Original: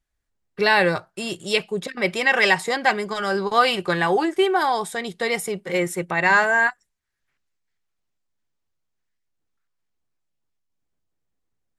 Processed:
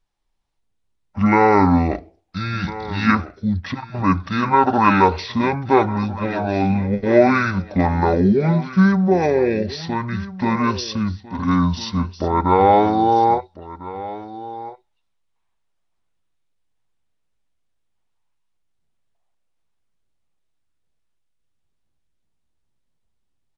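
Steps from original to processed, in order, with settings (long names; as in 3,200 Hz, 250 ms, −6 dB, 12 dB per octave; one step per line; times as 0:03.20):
low-shelf EQ 440 Hz +3.5 dB
single-tap delay 675 ms −16.5 dB
wrong playback speed 15 ips tape played at 7.5 ips
level +2.5 dB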